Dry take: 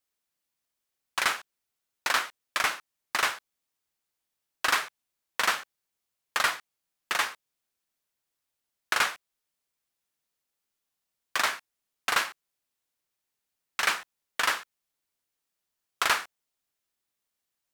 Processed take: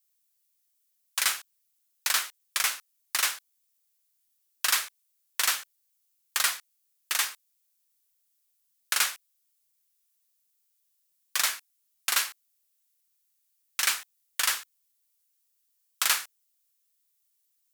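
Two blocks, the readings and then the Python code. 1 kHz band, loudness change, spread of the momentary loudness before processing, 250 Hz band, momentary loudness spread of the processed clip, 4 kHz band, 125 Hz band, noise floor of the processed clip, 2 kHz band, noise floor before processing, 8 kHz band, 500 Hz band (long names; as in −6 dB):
−6.5 dB, +1.0 dB, 11 LU, below −10 dB, 11 LU, +2.0 dB, can't be measured, −74 dBFS, −3.5 dB, −85 dBFS, +8.0 dB, −10.0 dB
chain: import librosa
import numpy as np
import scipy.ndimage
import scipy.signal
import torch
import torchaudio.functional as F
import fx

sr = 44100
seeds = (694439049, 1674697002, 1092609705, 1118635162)

y = F.preemphasis(torch.from_numpy(x), 0.9).numpy()
y = y * librosa.db_to_amplitude(8.0)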